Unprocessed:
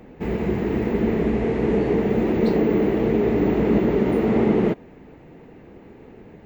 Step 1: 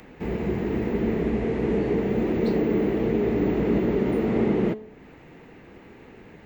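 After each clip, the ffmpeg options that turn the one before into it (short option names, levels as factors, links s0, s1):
-filter_complex "[0:a]bandreject=f=215.7:t=h:w=4,bandreject=f=431.4:t=h:w=4,bandreject=f=647.1:t=h:w=4,bandreject=f=862.8:t=h:w=4,bandreject=f=1078.5:t=h:w=4,bandreject=f=1294.2:t=h:w=4,bandreject=f=1509.9:t=h:w=4,bandreject=f=1725.6:t=h:w=4,bandreject=f=1941.3:t=h:w=4,bandreject=f=2157:t=h:w=4,bandreject=f=2372.7:t=h:w=4,bandreject=f=2588.4:t=h:w=4,bandreject=f=2804.1:t=h:w=4,bandreject=f=3019.8:t=h:w=4,bandreject=f=3235.5:t=h:w=4,bandreject=f=3451.2:t=h:w=4,bandreject=f=3666.9:t=h:w=4,bandreject=f=3882.6:t=h:w=4,bandreject=f=4098.3:t=h:w=4,bandreject=f=4314:t=h:w=4,bandreject=f=4529.7:t=h:w=4,bandreject=f=4745.4:t=h:w=4,bandreject=f=4961.1:t=h:w=4,bandreject=f=5176.8:t=h:w=4,bandreject=f=5392.5:t=h:w=4,bandreject=f=5608.2:t=h:w=4,bandreject=f=5823.9:t=h:w=4,bandreject=f=6039.6:t=h:w=4,bandreject=f=6255.3:t=h:w=4,bandreject=f=6471:t=h:w=4,bandreject=f=6686.7:t=h:w=4,bandreject=f=6902.4:t=h:w=4,bandreject=f=7118.1:t=h:w=4,bandreject=f=7333.8:t=h:w=4,bandreject=f=7549.5:t=h:w=4,bandreject=f=7765.2:t=h:w=4,bandreject=f=7980.9:t=h:w=4,bandreject=f=8196.6:t=h:w=4,bandreject=f=8412.3:t=h:w=4,bandreject=f=8628:t=h:w=4,acrossover=split=710|1000[s0][s1][s2];[s1]alimiter=level_in=5.01:limit=0.0631:level=0:latency=1,volume=0.2[s3];[s2]acompressor=mode=upward:threshold=0.00631:ratio=2.5[s4];[s0][s3][s4]amix=inputs=3:normalize=0,volume=0.708"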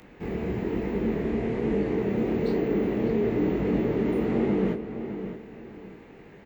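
-filter_complex "[0:a]flanger=delay=20:depth=7.1:speed=1.1,asplit=2[s0][s1];[s1]adelay=608,lowpass=f=3700:p=1,volume=0.335,asplit=2[s2][s3];[s3]adelay=608,lowpass=f=3700:p=1,volume=0.32,asplit=2[s4][s5];[s5]adelay=608,lowpass=f=3700:p=1,volume=0.32,asplit=2[s6][s7];[s7]adelay=608,lowpass=f=3700:p=1,volume=0.32[s8];[s0][s2][s4][s6][s8]amix=inputs=5:normalize=0"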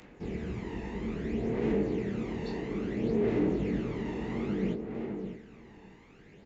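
-af "aresample=16000,aresample=44100,crystalizer=i=2.5:c=0,aphaser=in_gain=1:out_gain=1:delay=1.1:decay=0.49:speed=0.6:type=sinusoidal,volume=0.376"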